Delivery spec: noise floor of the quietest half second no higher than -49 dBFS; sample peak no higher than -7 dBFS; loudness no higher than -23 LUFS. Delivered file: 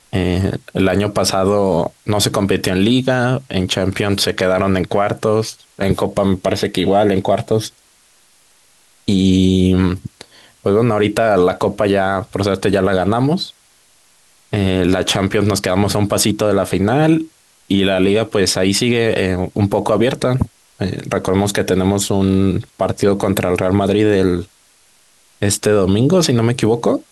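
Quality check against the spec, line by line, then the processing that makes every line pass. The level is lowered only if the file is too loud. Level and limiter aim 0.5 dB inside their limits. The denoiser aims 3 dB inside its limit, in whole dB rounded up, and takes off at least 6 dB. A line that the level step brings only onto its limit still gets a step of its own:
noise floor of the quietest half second -53 dBFS: OK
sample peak -3.5 dBFS: fail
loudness -16.0 LUFS: fail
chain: gain -7.5 dB

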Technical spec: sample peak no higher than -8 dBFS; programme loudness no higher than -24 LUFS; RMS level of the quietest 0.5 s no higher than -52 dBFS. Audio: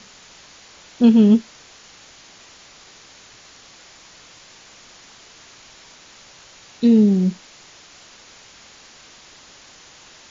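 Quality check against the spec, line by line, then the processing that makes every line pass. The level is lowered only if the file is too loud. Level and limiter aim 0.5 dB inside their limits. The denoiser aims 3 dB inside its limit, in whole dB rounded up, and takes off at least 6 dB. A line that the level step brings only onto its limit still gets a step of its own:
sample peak -3.5 dBFS: fail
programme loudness -15.5 LUFS: fail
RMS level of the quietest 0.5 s -46 dBFS: fail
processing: gain -9 dB

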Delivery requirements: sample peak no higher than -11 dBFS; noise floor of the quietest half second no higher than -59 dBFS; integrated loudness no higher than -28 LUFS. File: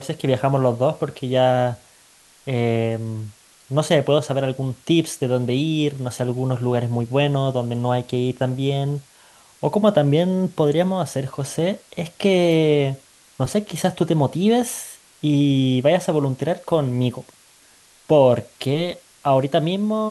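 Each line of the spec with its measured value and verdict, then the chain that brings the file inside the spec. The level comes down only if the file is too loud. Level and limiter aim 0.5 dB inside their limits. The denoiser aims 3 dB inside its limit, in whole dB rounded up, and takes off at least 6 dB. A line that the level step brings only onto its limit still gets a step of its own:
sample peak -3.0 dBFS: fail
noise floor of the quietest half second -52 dBFS: fail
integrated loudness -20.5 LUFS: fail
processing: gain -8 dB; limiter -11.5 dBFS

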